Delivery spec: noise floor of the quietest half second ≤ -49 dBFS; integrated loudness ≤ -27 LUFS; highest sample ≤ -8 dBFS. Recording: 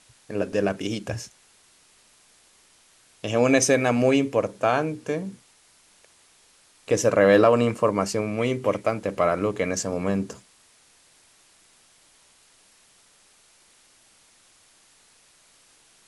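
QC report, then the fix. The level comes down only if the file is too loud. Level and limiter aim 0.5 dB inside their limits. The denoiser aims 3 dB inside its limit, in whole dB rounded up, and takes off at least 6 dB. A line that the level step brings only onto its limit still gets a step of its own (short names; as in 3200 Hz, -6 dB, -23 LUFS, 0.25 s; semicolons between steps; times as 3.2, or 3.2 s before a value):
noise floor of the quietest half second -58 dBFS: OK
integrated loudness -23.0 LUFS: fail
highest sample -4.5 dBFS: fail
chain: gain -4.5 dB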